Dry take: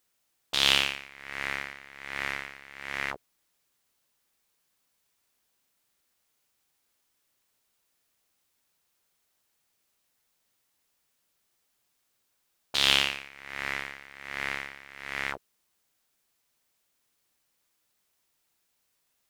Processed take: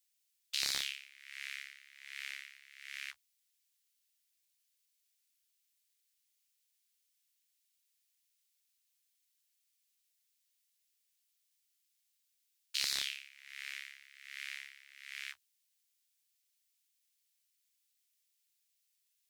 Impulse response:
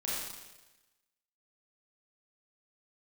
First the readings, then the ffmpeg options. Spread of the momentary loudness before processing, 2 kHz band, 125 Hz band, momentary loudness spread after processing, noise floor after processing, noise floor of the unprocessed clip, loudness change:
20 LU, -13.0 dB, under -20 dB, 19 LU, -80 dBFS, -76 dBFS, -11.5 dB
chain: -filter_complex "[0:a]lowpass=f=2.5k:p=1,afftfilt=real='re*lt(hypot(re,im),0.0794)':imag='im*lt(hypot(re,im),0.0794)':win_size=1024:overlap=0.75,aderivative,acrossover=split=110|1700[a][b][c];[a]flanger=delay=15.5:depth=3.3:speed=0.24[d];[b]acrusher=bits=5:mix=0:aa=0.000001[e];[d][e][c]amix=inputs=3:normalize=0,volume=5.5dB"

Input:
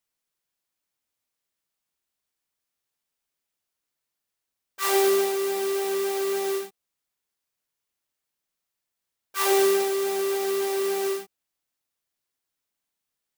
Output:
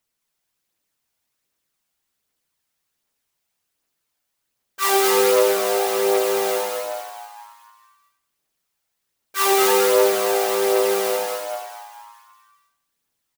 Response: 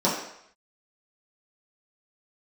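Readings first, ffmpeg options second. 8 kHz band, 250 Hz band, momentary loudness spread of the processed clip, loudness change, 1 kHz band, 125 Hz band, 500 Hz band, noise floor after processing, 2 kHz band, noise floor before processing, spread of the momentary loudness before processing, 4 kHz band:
+7.0 dB, +3.0 dB, 15 LU, +5.5 dB, +8.5 dB, n/a, +5.5 dB, -77 dBFS, +7.0 dB, -84 dBFS, 9 LU, +7.5 dB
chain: -filter_complex "[0:a]asplit=2[a][b];[b]asplit=7[c][d][e][f][g][h][i];[c]adelay=214,afreqshift=110,volume=-3dB[j];[d]adelay=428,afreqshift=220,volume=-9dB[k];[e]adelay=642,afreqshift=330,volume=-15dB[l];[f]adelay=856,afreqshift=440,volume=-21.1dB[m];[g]adelay=1070,afreqshift=550,volume=-27.1dB[n];[h]adelay=1284,afreqshift=660,volume=-33.1dB[o];[i]adelay=1498,afreqshift=770,volume=-39.1dB[p];[j][k][l][m][n][o][p]amix=inputs=7:normalize=0[q];[a][q]amix=inputs=2:normalize=0,aphaser=in_gain=1:out_gain=1:delay=1.5:decay=0.3:speed=1.3:type=triangular,asplit=2[r][s];[s]adelay=91,lowpass=f=1.6k:p=1,volume=-8dB,asplit=2[t][u];[u]adelay=91,lowpass=f=1.6k:p=1,volume=0.47,asplit=2[v][w];[w]adelay=91,lowpass=f=1.6k:p=1,volume=0.47,asplit=2[x][y];[y]adelay=91,lowpass=f=1.6k:p=1,volume=0.47,asplit=2[z][aa];[aa]adelay=91,lowpass=f=1.6k:p=1,volume=0.47[ab];[t][v][x][z][ab]amix=inputs=5:normalize=0[ac];[r][ac]amix=inputs=2:normalize=0,volume=4.5dB"

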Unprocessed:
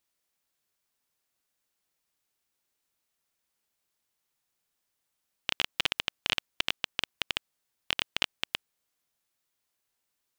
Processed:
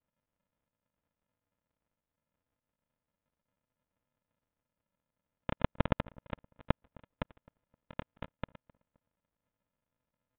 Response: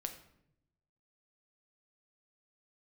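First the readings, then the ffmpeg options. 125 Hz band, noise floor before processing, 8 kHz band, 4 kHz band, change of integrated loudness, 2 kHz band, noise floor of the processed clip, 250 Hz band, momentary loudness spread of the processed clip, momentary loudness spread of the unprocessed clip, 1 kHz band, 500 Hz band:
+14.0 dB, -82 dBFS, under -30 dB, -23.0 dB, -7.5 dB, -13.0 dB, under -85 dBFS, +10.5 dB, 14 LU, 6 LU, 0.0 dB, +6.0 dB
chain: -filter_complex "[0:a]highpass=160,aemphasis=mode=reproduction:type=50fm,aresample=11025,acrusher=samples=29:mix=1:aa=0.000001,aresample=44100,asplit=2[a][b];[b]highpass=f=720:p=1,volume=15dB,asoftclip=type=tanh:threshold=-10.5dB[c];[a][c]amix=inputs=2:normalize=0,lowpass=f=2k:p=1,volume=-6dB,asplit=2[d][e];[e]adelay=261,lowpass=f=1.4k:p=1,volume=-23dB,asplit=2[f][g];[g]adelay=261,lowpass=f=1.4k:p=1,volume=0.35[h];[d][f][h]amix=inputs=3:normalize=0,aresample=8000,aresample=44100,volume=1.5dB"

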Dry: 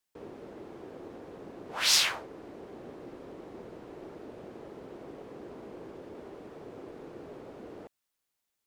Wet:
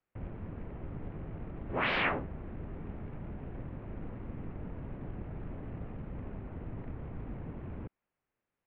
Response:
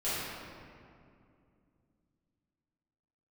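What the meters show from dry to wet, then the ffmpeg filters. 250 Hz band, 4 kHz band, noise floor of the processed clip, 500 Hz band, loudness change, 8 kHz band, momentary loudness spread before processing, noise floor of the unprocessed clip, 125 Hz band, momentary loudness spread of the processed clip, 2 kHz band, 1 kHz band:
+3.0 dB, -14.5 dB, under -85 dBFS, -1.0 dB, -14.0 dB, under -40 dB, 23 LU, -84 dBFS, +14.0 dB, 12 LU, +0.5 dB, +2.5 dB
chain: -filter_complex "[0:a]tiltshelf=f=660:g=7.5,asplit=2[a][b];[b]acrusher=bits=3:mode=log:mix=0:aa=0.000001,volume=-9dB[c];[a][c]amix=inputs=2:normalize=0,highpass=f=440:t=q:w=0.5412,highpass=f=440:t=q:w=1.307,lowpass=f=2.9k:t=q:w=0.5176,lowpass=f=2.9k:t=q:w=0.7071,lowpass=f=2.9k:t=q:w=1.932,afreqshift=-370,volume=4.5dB"

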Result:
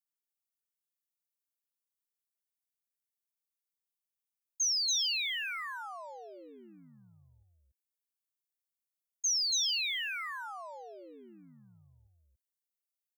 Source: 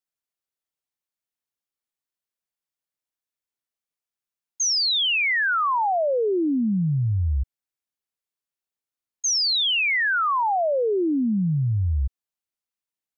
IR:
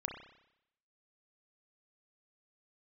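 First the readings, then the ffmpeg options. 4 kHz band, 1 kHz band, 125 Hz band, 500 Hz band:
-9.0 dB, -20.5 dB, under -35 dB, -26.5 dB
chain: -af "aeval=exprs='0.119*(cos(1*acos(clip(val(0)/0.119,-1,1)))-cos(1*PI/2))+0.00106*(cos(6*acos(clip(val(0)/0.119,-1,1)))-cos(6*PI/2))+0.000841*(cos(8*acos(clip(val(0)/0.119,-1,1)))-cos(8*PI/2))':c=same,aderivative,aecho=1:1:283:0.708,volume=-5.5dB"

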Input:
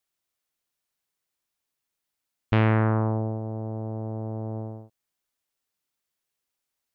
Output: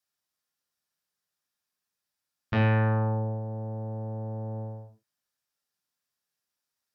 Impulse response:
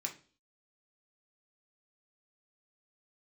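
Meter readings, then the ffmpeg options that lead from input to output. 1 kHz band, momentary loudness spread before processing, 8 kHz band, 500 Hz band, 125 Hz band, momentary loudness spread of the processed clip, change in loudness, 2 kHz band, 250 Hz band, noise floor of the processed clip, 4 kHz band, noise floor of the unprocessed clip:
-2.5 dB, 13 LU, n/a, -2.5 dB, -1.5 dB, 13 LU, -2.5 dB, -0.5 dB, -4.0 dB, under -85 dBFS, -2.0 dB, -84 dBFS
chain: -filter_complex "[1:a]atrim=start_sample=2205,atrim=end_sample=4410,asetrate=30870,aresample=44100[a];[0:a][a]afir=irnorm=-1:irlink=0,volume=-3.5dB"

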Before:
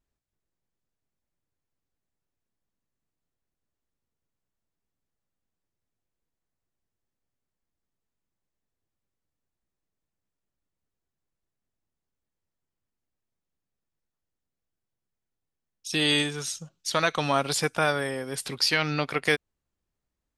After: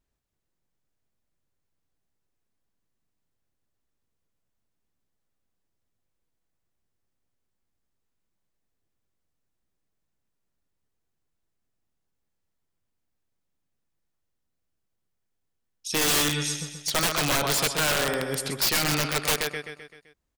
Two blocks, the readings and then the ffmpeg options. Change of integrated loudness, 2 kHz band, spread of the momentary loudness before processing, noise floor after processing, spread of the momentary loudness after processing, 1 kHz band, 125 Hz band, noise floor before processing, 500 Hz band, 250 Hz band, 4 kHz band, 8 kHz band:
+2.0 dB, 0.0 dB, 10 LU, -79 dBFS, 8 LU, 0.0 dB, +1.0 dB, under -85 dBFS, -1.0 dB, -0.5 dB, +1.5 dB, +8.0 dB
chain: -af "aeval=exprs='0.447*(cos(1*acos(clip(val(0)/0.447,-1,1)))-cos(1*PI/2))+0.00708*(cos(4*acos(clip(val(0)/0.447,-1,1)))-cos(4*PI/2))':c=same,aecho=1:1:129|258|387|516|645|774:0.398|0.203|0.104|0.0528|0.0269|0.0137,aeval=exprs='(mod(8.91*val(0)+1,2)-1)/8.91':c=same,volume=2.5dB"

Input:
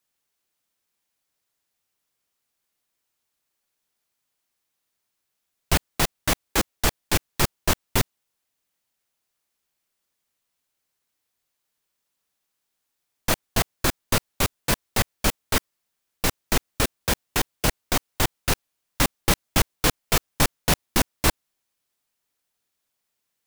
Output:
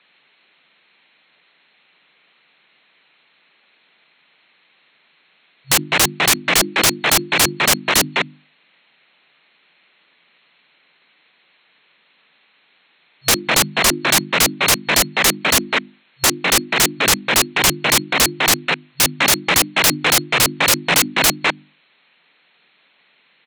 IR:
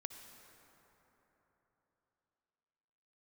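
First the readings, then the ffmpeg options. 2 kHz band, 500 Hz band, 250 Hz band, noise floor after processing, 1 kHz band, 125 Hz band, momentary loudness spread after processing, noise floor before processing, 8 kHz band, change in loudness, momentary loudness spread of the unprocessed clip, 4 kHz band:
+12.5 dB, +6.5 dB, +5.0 dB, -59 dBFS, +8.5 dB, -0.5 dB, 4 LU, -79 dBFS, +12.0 dB, +10.0 dB, 5 LU, +12.0 dB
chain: -filter_complex "[0:a]equalizer=f=2.3k:t=o:w=1:g=9,bandreject=f=50:t=h:w=6,bandreject=f=100:t=h:w=6,bandreject=f=150:t=h:w=6,bandreject=f=200:t=h:w=6,bandreject=f=250:t=h:w=6,bandreject=f=300:t=h:w=6,bandreject=f=350:t=h:w=6,asplit=2[a][b];[b]adelay=204.1,volume=-17dB,highshelf=f=4k:g=-4.59[c];[a][c]amix=inputs=2:normalize=0,acrossover=split=390|2400[d][e][f];[d]acompressor=threshold=-38dB:ratio=6[g];[e]volume=25.5dB,asoftclip=hard,volume=-25.5dB[h];[g][h][f]amix=inputs=3:normalize=0,acrusher=bits=8:mode=log:mix=0:aa=0.000001,afftfilt=real='re*between(b*sr/4096,130,4300)':imag='im*between(b*sr/4096,130,4300)':win_size=4096:overlap=0.75,aeval=exprs='0.355*sin(PI/2*8.91*val(0)/0.355)':c=same"

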